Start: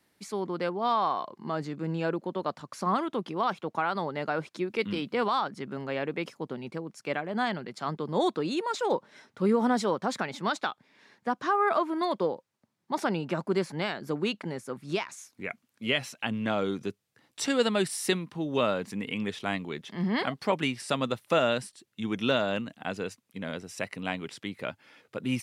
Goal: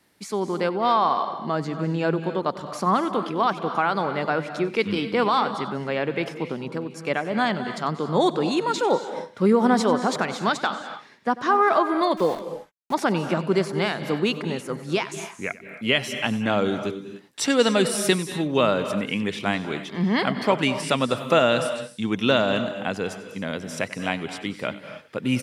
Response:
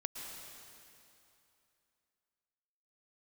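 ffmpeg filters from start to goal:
-filter_complex "[0:a]aecho=1:1:94:0.126,asettb=1/sr,asplit=3[link_01][link_02][link_03];[link_01]atrim=end=12.174[link_04];[link_02]atrim=start=12.17:end=12.94,asetpts=PTS-STARTPTS,afade=type=in:duration=0.004:curve=qsin,afade=type=out:start_time=0.766:duration=0.004:curve=qsin,aeval=exprs='val(0)*gte(abs(val(0)),0.00944)':channel_layout=same[link_05];[link_03]atrim=start=12.936[link_06];[link_04][link_05]acrossfade=duration=0.004:curve1=hsin:curve2=qsin[link_07];[link_07][link_06]acrossfade=duration=0.004:curve1=qsin:curve2=hsin,asplit=2[link_08][link_09];[1:a]atrim=start_sample=2205,afade=type=out:start_time=0.23:duration=0.01,atrim=end_sample=10584,asetrate=26460,aresample=44100[link_10];[link_09][link_10]afir=irnorm=-1:irlink=0,volume=0.5dB[link_11];[link_08][link_11]amix=inputs=2:normalize=0"

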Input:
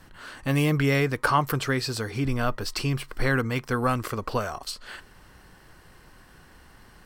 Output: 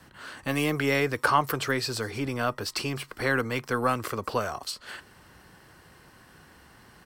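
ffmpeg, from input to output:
ffmpeg -i in.wav -filter_complex "[0:a]highpass=75,acrossover=split=250|1300|5700[link_01][link_02][link_03][link_04];[link_01]asoftclip=type=tanh:threshold=-35.5dB[link_05];[link_04]aecho=1:1:201:0.15[link_06];[link_05][link_02][link_03][link_06]amix=inputs=4:normalize=0" out.wav

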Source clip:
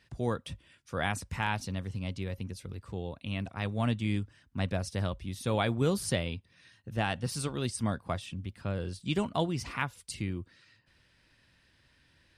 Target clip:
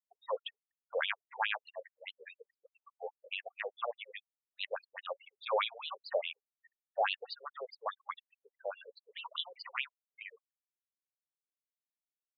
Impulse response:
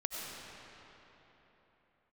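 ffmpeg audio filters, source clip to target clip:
-af "afftfilt=real='re*gte(hypot(re,im),0.00794)':imag='im*gte(hypot(re,im),0.00794)':win_size=1024:overlap=0.75,afftfilt=real='re*between(b*sr/1024,570*pow(3600/570,0.5+0.5*sin(2*PI*4.8*pts/sr))/1.41,570*pow(3600/570,0.5+0.5*sin(2*PI*4.8*pts/sr))*1.41)':imag='im*between(b*sr/1024,570*pow(3600/570,0.5+0.5*sin(2*PI*4.8*pts/sr))/1.41,570*pow(3600/570,0.5+0.5*sin(2*PI*4.8*pts/sr))*1.41)':win_size=1024:overlap=0.75,volume=4.5dB"

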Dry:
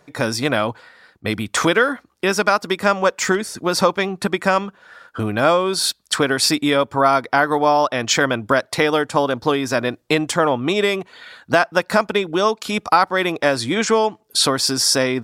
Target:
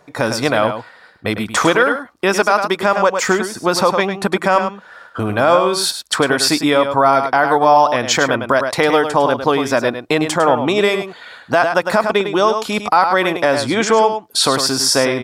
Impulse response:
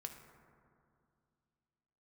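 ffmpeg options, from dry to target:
-filter_complex "[0:a]equalizer=frequency=820:width=0.83:gain=5.5,asplit=2[link_01][link_02];[link_02]aecho=0:1:103:0.355[link_03];[link_01][link_03]amix=inputs=2:normalize=0,alimiter=level_in=2dB:limit=-1dB:release=50:level=0:latency=1,volume=-1dB"

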